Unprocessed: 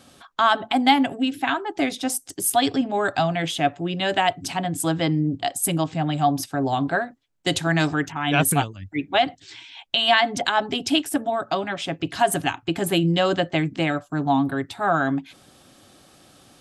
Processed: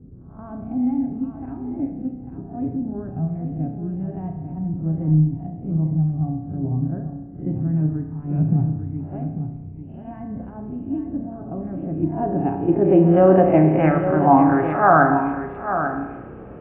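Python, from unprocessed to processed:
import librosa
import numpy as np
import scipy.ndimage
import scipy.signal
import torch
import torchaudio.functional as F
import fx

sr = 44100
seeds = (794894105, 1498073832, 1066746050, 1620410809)

p1 = fx.spec_swells(x, sr, rise_s=0.4)
p2 = scipy.signal.sosfilt(scipy.signal.ellip(4, 1.0, 60, 2600.0, 'lowpass', fs=sr, output='sos'), p1)
p3 = fx.level_steps(p2, sr, step_db=11)
p4 = p2 + F.gain(torch.from_numpy(p3), -1.0).numpy()
p5 = fx.dmg_noise_band(p4, sr, seeds[0], low_hz=36.0, high_hz=480.0, level_db=-42.0)
p6 = fx.filter_sweep_lowpass(p5, sr, from_hz=160.0, to_hz=1300.0, start_s=11.18, end_s=14.21, q=0.94)
p7 = p6 + fx.echo_single(p6, sr, ms=845, db=-9.0, dry=0)
p8 = fx.rev_spring(p7, sr, rt60_s=1.1, pass_ms=(32,), chirp_ms=40, drr_db=4.5)
y = F.gain(torch.from_numpy(p8), 1.5).numpy()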